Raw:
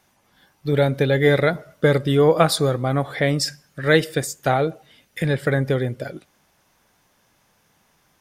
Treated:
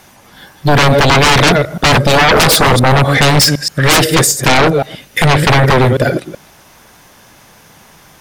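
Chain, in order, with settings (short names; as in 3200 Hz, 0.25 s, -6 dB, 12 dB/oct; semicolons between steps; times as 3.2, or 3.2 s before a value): reverse delay 0.127 s, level -11 dB; sine folder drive 19 dB, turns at -1.5 dBFS; gain -3.5 dB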